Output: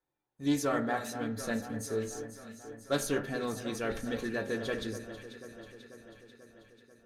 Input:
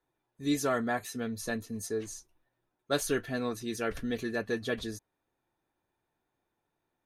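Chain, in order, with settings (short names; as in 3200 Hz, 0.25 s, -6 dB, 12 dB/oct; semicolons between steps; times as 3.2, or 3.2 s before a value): sample leveller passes 1; echo with dull and thin repeats by turns 0.245 s, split 1700 Hz, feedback 79%, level -10 dB; reverb RT60 0.55 s, pre-delay 3 ms, DRR 6.5 dB; Doppler distortion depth 0.1 ms; gain -5 dB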